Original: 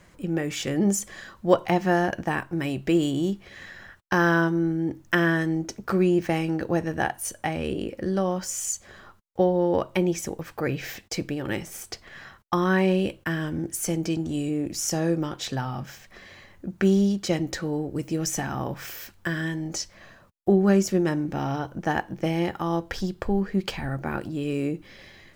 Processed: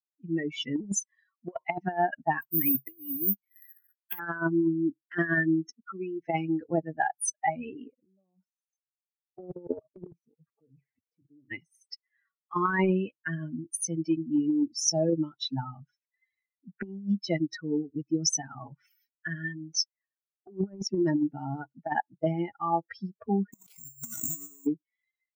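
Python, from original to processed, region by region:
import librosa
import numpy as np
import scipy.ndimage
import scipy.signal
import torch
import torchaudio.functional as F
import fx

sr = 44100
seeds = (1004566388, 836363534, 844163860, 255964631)

y = fx.chain(x, sr, fx.self_delay(depth_ms=0.22),
    fx.resample_bad(factor=3, down='filtered', up='zero_stuff'), at=(2.41, 4.19))
y = fx.chain(y, sr, fx.ladder_lowpass(hz=5400.0, resonance_pct=25),
    fx.low_shelf(hz=64.0, db=-3.5), at=(5.8, 6.22))
y = fx.chain(y, sr, fx.level_steps(step_db=22),
    fx.tilt_shelf(db=8.5, hz=1100.0), at=(7.99, 11.51))
y = fx.chain(y, sr, fx.halfwave_hold(),
    fx.resample_bad(factor=6, down='none', up='zero_stuff'),
    fx.sustainer(db_per_s=23.0), at=(23.55, 24.65))
y = fx.bin_expand(y, sr, power=3.0)
y = scipy.signal.sosfilt(scipy.signal.butter(4, 130.0, 'highpass', fs=sr, output='sos'), y)
y = fx.over_compress(y, sr, threshold_db=-35.0, ratio=-0.5)
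y = y * 10.0 ** (6.0 / 20.0)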